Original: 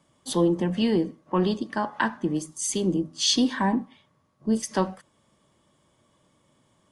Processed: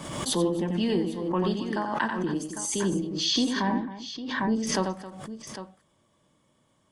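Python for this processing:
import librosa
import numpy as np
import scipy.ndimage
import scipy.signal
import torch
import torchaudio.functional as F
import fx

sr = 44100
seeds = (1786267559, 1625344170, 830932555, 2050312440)

y = fx.lowpass(x, sr, hz=5600.0, slope=24, at=(2.92, 4.67))
y = fx.echo_multitap(y, sr, ms=(90, 267, 803), db=(-6.0, -15.0, -12.5))
y = fx.pre_swell(y, sr, db_per_s=43.0)
y = F.gain(torch.from_numpy(y), -4.0).numpy()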